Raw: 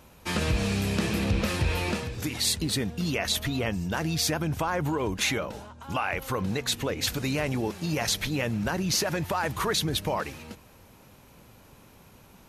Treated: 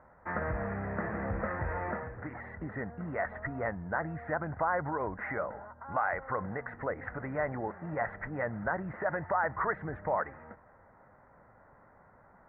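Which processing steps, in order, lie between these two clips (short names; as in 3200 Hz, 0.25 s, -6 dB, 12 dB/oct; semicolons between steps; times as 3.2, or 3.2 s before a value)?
rippled Chebyshev low-pass 2000 Hz, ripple 3 dB; resonant low shelf 510 Hz -7 dB, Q 1.5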